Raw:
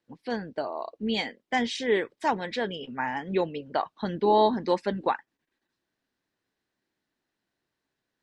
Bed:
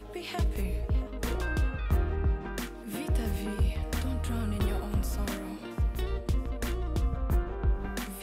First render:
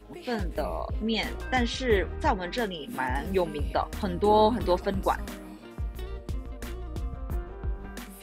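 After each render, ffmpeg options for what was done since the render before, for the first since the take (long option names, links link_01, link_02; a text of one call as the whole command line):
ffmpeg -i in.wav -i bed.wav -filter_complex "[1:a]volume=-5dB[link_01];[0:a][link_01]amix=inputs=2:normalize=0" out.wav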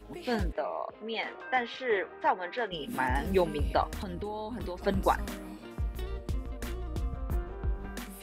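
ffmpeg -i in.wav -filter_complex "[0:a]asplit=3[link_01][link_02][link_03];[link_01]afade=type=out:start_time=0.51:duration=0.02[link_04];[link_02]highpass=500,lowpass=2300,afade=type=in:start_time=0.51:duration=0.02,afade=type=out:start_time=2.71:duration=0.02[link_05];[link_03]afade=type=in:start_time=2.71:duration=0.02[link_06];[link_04][link_05][link_06]amix=inputs=3:normalize=0,asettb=1/sr,asplit=3[link_07][link_08][link_09];[link_07]atrim=end=3.904[link_10];[link_08]atrim=start=3.9:end=4.85,asetpts=PTS-STARTPTS,afade=type=in:duration=0.004:curve=qsin,afade=type=out:start_time=0.946:duration=0.004:curve=qsin,acompressor=threshold=-32dB:ratio=20:attack=3.2:release=140:knee=1:detection=peak[link_11];[link_09]atrim=start=4.846[link_12];[link_10][link_11]acrossfade=duration=0.004:curve1=hsin:curve2=qsin[link_13];[link_13][link_12]acrossfade=duration=0.004:curve1=qsin:curve2=hsin" out.wav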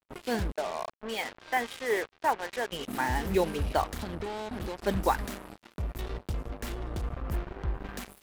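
ffmpeg -i in.wav -af "acrusher=bits=5:mix=0:aa=0.5" out.wav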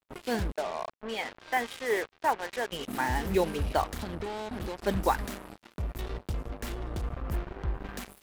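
ffmpeg -i in.wav -filter_complex "[0:a]asettb=1/sr,asplit=3[link_01][link_02][link_03];[link_01]atrim=end=0.634[link_04];[link_02]atrim=start=0.63:end=1.31,asetpts=PTS-STARTPTS,afade=type=in:duration=0.004:curve=qsin,afade=type=out:start_time=0.676:duration=0.004:curve=qsin,highshelf=frequency=8500:gain=-11[link_05];[link_03]atrim=start=1.306[link_06];[link_04][link_05]acrossfade=duration=0.004:curve1=hsin:curve2=qsin[link_07];[link_07][link_06]acrossfade=duration=0.004:curve1=qsin:curve2=hsin" out.wav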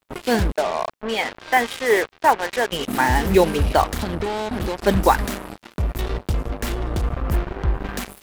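ffmpeg -i in.wav -af "volume=11dB,alimiter=limit=-3dB:level=0:latency=1" out.wav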